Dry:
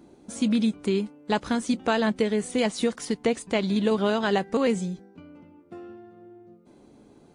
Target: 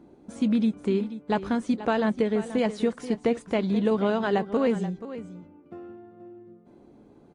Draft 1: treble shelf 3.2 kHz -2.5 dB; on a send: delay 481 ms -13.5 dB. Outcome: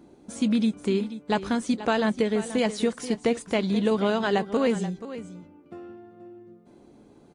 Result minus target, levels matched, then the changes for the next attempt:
8 kHz band +9.5 dB
change: treble shelf 3.2 kHz -14 dB

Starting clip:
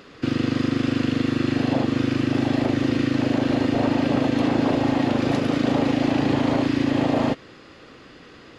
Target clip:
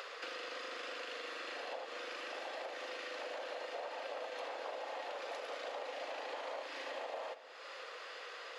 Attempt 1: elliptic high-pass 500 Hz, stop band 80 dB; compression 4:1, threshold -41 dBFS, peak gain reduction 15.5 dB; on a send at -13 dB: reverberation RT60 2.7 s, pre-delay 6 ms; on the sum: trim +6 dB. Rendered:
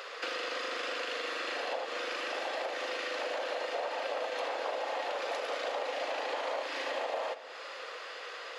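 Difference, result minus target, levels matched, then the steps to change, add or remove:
compression: peak gain reduction -8 dB
change: compression 4:1, threshold -52 dBFS, peak gain reduction 23.5 dB

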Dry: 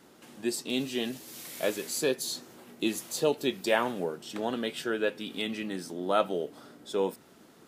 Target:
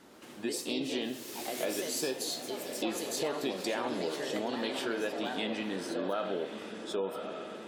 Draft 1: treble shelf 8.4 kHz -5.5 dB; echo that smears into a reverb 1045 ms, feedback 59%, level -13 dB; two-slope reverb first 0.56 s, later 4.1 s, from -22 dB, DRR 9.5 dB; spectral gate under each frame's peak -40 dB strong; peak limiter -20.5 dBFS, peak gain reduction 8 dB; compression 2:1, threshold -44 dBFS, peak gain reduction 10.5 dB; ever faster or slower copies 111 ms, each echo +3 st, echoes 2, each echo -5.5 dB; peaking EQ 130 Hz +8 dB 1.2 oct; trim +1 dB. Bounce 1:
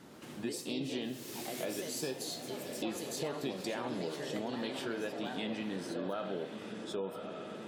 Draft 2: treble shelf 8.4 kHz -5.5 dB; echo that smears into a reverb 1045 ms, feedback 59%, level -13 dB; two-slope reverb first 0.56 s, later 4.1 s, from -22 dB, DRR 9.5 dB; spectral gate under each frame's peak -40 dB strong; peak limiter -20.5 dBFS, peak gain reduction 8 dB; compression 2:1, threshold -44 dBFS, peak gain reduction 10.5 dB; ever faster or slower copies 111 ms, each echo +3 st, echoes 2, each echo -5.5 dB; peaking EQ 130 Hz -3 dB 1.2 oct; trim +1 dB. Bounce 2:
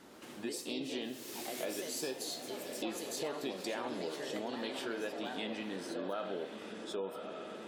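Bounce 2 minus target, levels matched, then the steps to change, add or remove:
compression: peak gain reduction +5 dB
change: compression 2:1, threshold -33.5 dBFS, peak gain reduction 5 dB

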